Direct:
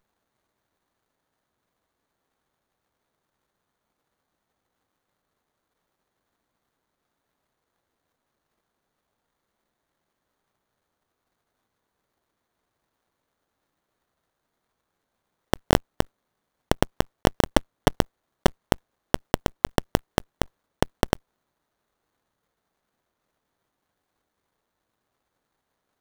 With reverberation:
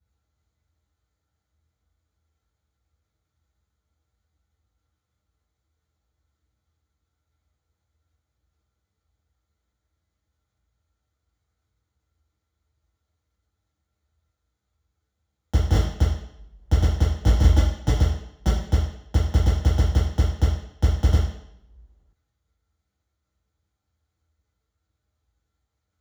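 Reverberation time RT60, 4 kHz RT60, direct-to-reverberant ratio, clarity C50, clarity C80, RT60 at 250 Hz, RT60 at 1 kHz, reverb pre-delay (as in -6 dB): 0.75 s, 0.70 s, -13.0 dB, 1.0 dB, 6.0 dB, 0.75 s, 0.70 s, 3 ms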